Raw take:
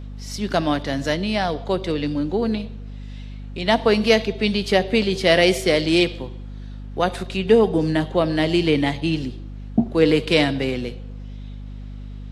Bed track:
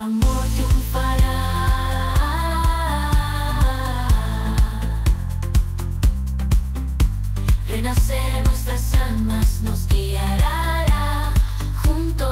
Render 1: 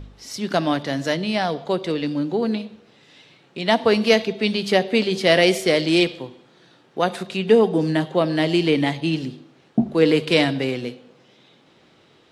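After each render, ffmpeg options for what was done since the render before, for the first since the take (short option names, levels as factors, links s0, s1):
-af "bandreject=f=50:t=h:w=4,bandreject=f=100:t=h:w=4,bandreject=f=150:t=h:w=4,bandreject=f=200:t=h:w=4,bandreject=f=250:t=h:w=4"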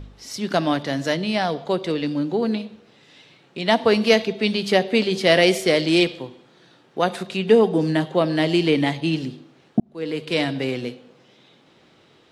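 -filter_complex "[0:a]asplit=2[s0][s1];[s0]atrim=end=9.8,asetpts=PTS-STARTPTS,afade=t=out:st=9.796:d=0.004:c=hsin[s2];[s1]atrim=start=9.8,asetpts=PTS-STARTPTS,afade=t=in:d=0.99[s3];[s2][s3]concat=n=2:v=0:a=1"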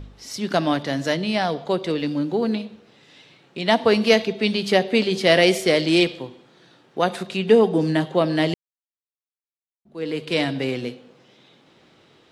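-filter_complex "[0:a]asettb=1/sr,asplit=3[s0][s1][s2];[s0]atrim=end=1.994[s3];[s1]atrim=start=1.99:end=2.56,asetpts=PTS-STARTPTS,afade=t=in:d=0.004:c=qsin,afade=t=out:st=0.566:d=0.004:c=qsin,aeval=exprs='sgn(val(0))*max(abs(val(0))-0.00168,0)':c=same[s4];[s2]atrim=start=2.556[s5];[s3][s4]acrossfade=d=0.004:c1=hsin:c2=qsin[s6];[s6][s5]acrossfade=d=0.004:c1=qsin:c2=hsin,asplit=3[s7][s8][s9];[s7]atrim=end=8.54,asetpts=PTS-STARTPTS,afade=t=out:st=8.536:d=0.004:c=hsin[s10];[s8]atrim=start=8.54:end=9.85,asetpts=PTS-STARTPTS,volume=0[s11];[s9]atrim=start=9.85,asetpts=PTS-STARTPTS,afade=t=in:d=0.004:c=hsin[s12];[s10][s11][s12]concat=n=3:v=0:a=1"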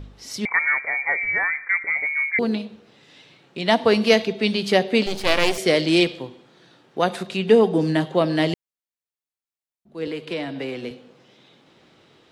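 -filter_complex "[0:a]asettb=1/sr,asplit=3[s0][s1][s2];[s0]atrim=end=0.454[s3];[s1]atrim=start=0.45:end=2.39,asetpts=PTS-STARTPTS,afade=t=in:d=0.004:c=qsin,afade=t=out:st=1.936:d=0.004:c=qsin,lowpass=f=2100:t=q:w=0.5098,lowpass=f=2100:t=q:w=0.6013,lowpass=f=2100:t=q:w=0.9,lowpass=f=2100:t=q:w=2.563,afreqshift=-2500[s4];[s2]atrim=start=2.386[s5];[s3][s4]acrossfade=d=0.004:c1=hsin:c2=qsin[s6];[s6][s5]acrossfade=d=0.004:c1=qsin:c2=hsin,asettb=1/sr,asplit=3[s7][s8][s9];[s7]atrim=end=5.064[s10];[s8]atrim=start=5.06:end=5.58,asetpts=PTS-STARTPTS,afade=t=in:d=0.004:c=qsin,afade=t=out:st=0.516:d=0.004:c=qsin,aeval=exprs='max(val(0),0)':c=same[s11];[s9]atrim=start=5.576[s12];[s10][s11]acrossfade=d=0.004:c1=hsin:c2=qsin[s13];[s13][s12]acrossfade=d=0.004:c1=qsin:c2=hsin,asettb=1/sr,asplit=3[s14][s15][s16];[s14]atrim=end=10.074[s17];[s15]atrim=start=10.07:end=10.91,asetpts=PTS-STARTPTS,afade=t=in:d=0.004:c=qsin,afade=t=out:st=0.836:d=0.004:c=qsin,acrossover=split=180|530|1300|3400[s18][s19][s20][s21][s22];[s18]acompressor=threshold=0.00355:ratio=3[s23];[s19]acompressor=threshold=0.0282:ratio=3[s24];[s20]acompressor=threshold=0.0178:ratio=3[s25];[s21]acompressor=threshold=0.0141:ratio=3[s26];[s22]acompressor=threshold=0.00316:ratio=3[s27];[s23][s24][s25][s26][s27]amix=inputs=5:normalize=0[s28];[s16]atrim=start=10.906[s29];[s17][s28]acrossfade=d=0.004:c1=hsin:c2=qsin[s30];[s30][s29]acrossfade=d=0.004:c1=qsin:c2=hsin"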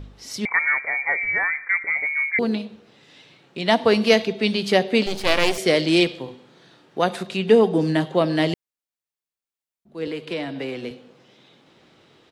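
-filter_complex "[0:a]asplit=3[s0][s1][s2];[s0]afade=t=out:st=6.26:d=0.02[s3];[s1]asplit=2[s4][s5];[s5]adelay=44,volume=0.562[s6];[s4][s6]amix=inputs=2:normalize=0,afade=t=in:st=6.26:d=0.02,afade=t=out:st=6.99:d=0.02[s7];[s2]afade=t=in:st=6.99:d=0.02[s8];[s3][s7][s8]amix=inputs=3:normalize=0"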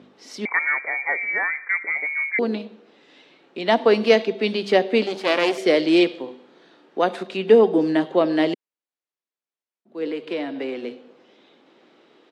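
-af "highpass=f=270:w=0.5412,highpass=f=270:w=1.3066,aemphasis=mode=reproduction:type=bsi"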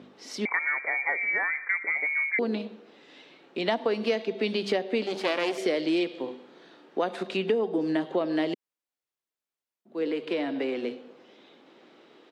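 -af "acompressor=threshold=0.0631:ratio=5"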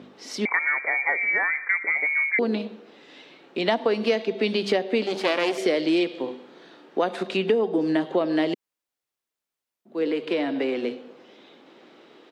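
-af "volume=1.58"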